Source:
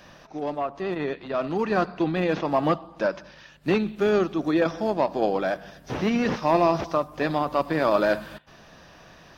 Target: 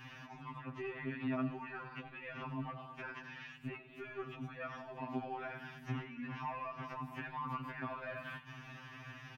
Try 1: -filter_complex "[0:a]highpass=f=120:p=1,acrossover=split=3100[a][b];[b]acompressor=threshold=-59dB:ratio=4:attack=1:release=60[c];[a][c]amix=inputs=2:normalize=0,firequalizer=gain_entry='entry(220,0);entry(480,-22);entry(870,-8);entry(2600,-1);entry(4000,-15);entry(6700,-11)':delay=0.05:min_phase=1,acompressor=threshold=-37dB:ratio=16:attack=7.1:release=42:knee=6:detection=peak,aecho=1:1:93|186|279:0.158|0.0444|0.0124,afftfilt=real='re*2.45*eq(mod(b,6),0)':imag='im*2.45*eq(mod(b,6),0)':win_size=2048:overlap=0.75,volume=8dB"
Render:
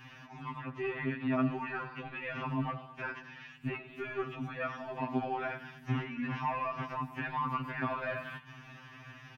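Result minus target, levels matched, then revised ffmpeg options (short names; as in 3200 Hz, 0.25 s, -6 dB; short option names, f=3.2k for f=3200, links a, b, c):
compressor: peak gain reduction -8 dB
-filter_complex "[0:a]highpass=f=120:p=1,acrossover=split=3100[a][b];[b]acompressor=threshold=-59dB:ratio=4:attack=1:release=60[c];[a][c]amix=inputs=2:normalize=0,firequalizer=gain_entry='entry(220,0);entry(480,-22);entry(870,-8);entry(2600,-1);entry(4000,-15);entry(6700,-11)':delay=0.05:min_phase=1,acompressor=threshold=-45.5dB:ratio=16:attack=7.1:release=42:knee=6:detection=peak,aecho=1:1:93|186|279:0.158|0.0444|0.0124,afftfilt=real='re*2.45*eq(mod(b,6),0)':imag='im*2.45*eq(mod(b,6),0)':win_size=2048:overlap=0.75,volume=8dB"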